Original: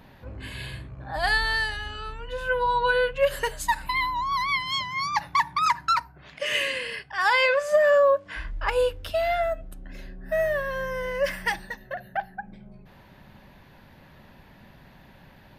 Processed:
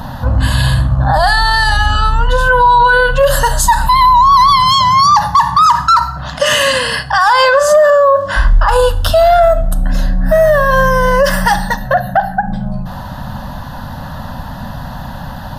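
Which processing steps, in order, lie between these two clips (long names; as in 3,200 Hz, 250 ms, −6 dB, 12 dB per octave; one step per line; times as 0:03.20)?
high-shelf EQ 8,600 Hz −5 dB
in parallel at −2.5 dB: downward compressor 10 to 1, threshold −36 dBFS, peak gain reduction 20 dB
on the sum: phaser with its sweep stopped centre 950 Hz, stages 4
gain into a clipping stage and back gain 15 dB
on a send at −13 dB: convolution reverb RT60 0.60 s, pre-delay 4 ms
on the sum: boost into a limiter +24.5 dB
level −1 dB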